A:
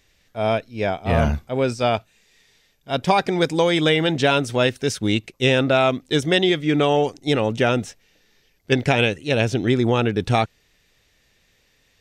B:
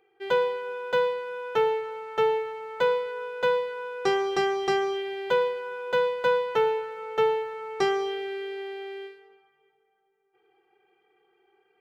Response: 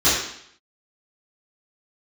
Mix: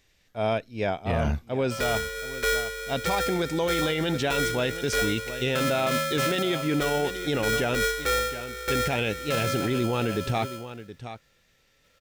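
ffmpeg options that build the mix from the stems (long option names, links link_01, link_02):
-filter_complex "[0:a]volume=-4dB,asplit=2[link_01][link_02];[link_02]volume=-16dB[link_03];[1:a]lowpass=2100,aeval=exprs='val(0)*sgn(sin(2*PI*940*n/s))':channel_layout=same,adelay=1500,volume=-0.5dB[link_04];[link_03]aecho=0:1:721:1[link_05];[link_01][link_04][link_05]amix=inputs=3:normalize=0,alimiter=limit=-17dB:level=0:latency=1:release=12"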